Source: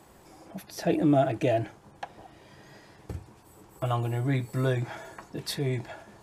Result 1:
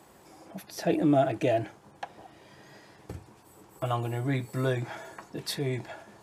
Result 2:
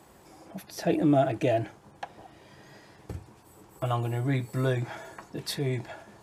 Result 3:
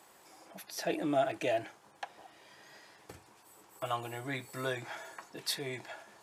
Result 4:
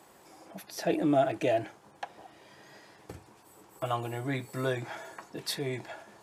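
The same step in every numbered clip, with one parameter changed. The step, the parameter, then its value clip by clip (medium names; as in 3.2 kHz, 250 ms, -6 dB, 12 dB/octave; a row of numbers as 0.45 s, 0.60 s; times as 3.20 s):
high-pass, cutoff frequency: 130 Hz, 50 Hz, 1 kHz, 360 Hz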